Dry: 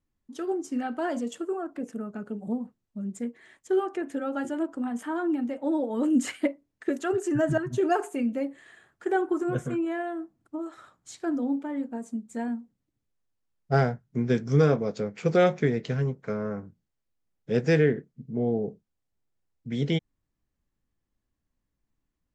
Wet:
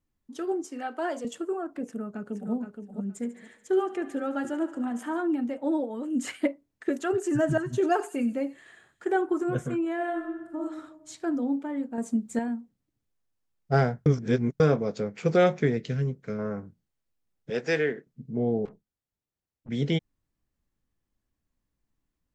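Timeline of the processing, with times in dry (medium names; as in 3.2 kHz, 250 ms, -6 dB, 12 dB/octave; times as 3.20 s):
0.64–1.25 s: high-pass 330 Hz 24 dB/octave
1.85–2.53 s: echo throw 470 ms, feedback 20%, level -6.5 dB
3.05–5.21 s: thinning echo 72 ms, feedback 77%, high-pass 290 Hz, level -15 dB
5.75–6.36 s: dip -9.5 dB, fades 0.29 s
7.12–9.10 s: feedback echo behind a high-pass 92 ms, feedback 48%, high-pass 3.5 kHz, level -9.5 dB
9.95–10.58 s: reverb throw, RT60 1.2 s, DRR 0 dB
11.98–12.39 s: gain +6.5 dB
14.06–14.60 s: reverse
15.77–16.39 s: peaking EQ 890 Hz -10.5 dB 1.4 oct
17.50–18.07 s: frequency weighting A
18.65–19.69 s: valve stage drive 46 dB, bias 0.75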